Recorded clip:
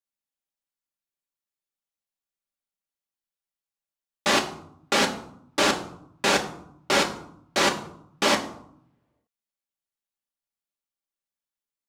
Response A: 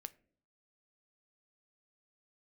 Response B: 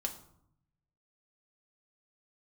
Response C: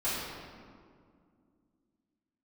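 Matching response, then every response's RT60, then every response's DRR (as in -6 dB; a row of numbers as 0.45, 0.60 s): B; not exponential, 0.70 s, 2.2 s; 12.5, 2.5, -12.0 dB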